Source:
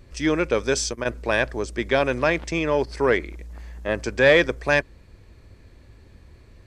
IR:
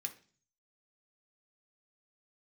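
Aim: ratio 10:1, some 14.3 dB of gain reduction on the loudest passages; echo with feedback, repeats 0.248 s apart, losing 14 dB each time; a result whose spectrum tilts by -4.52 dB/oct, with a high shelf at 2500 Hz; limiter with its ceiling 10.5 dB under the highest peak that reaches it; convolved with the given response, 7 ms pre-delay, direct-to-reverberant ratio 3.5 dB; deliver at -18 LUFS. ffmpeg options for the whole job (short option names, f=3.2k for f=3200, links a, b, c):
-filter_complex "[0:a]highshelf=f=2.5k:g=-6.5,acompressor=threshold=-27dB:ratio=10,alimiter=level_in=1.5dB:limit=-24dB:level=0:latency=1,volume=-1.5dB,aecho=1:1:248|496:0.2|0.0399,asplit=2[a][b];[1:a]atrim=start_sample=2205,adelay=7[c];[b][c]afir=irnorm=-1:irlink=0,volume=-1.5dB[d];[a][d]amix=inputs=2:normalize=0,volume=18dB"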